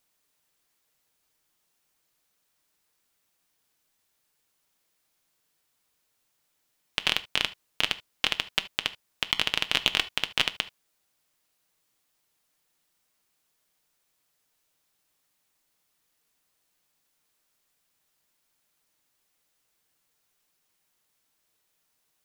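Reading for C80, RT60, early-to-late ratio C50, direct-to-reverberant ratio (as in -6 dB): 26.5 dB, not exponential, 18.0 dB, 10.0 dB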